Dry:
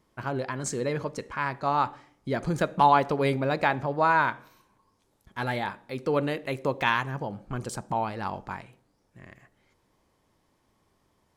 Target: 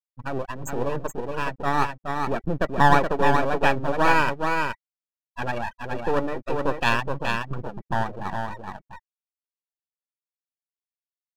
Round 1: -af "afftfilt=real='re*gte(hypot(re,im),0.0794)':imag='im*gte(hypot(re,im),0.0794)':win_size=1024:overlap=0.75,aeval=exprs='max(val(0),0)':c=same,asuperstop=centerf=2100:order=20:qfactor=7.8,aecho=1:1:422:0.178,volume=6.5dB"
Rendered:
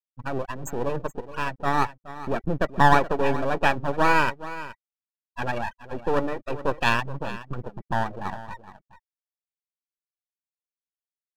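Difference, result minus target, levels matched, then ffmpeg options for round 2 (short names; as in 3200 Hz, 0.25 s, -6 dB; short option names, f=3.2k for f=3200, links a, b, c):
echo-to-direct -10.5 dB
-af "afftfilt=real='re*gte(hypot(re,im),0.0794)':imag='im*gte(hypot(re,im),0.0794)':win_size=1024:overlap=0.75,aeval=exprs='max(val(0),0)':c=same,asuperstop=centerf=2100:order=20:qfactor=7.8,aecho=1:1:422:0.596,volume=6.5dB"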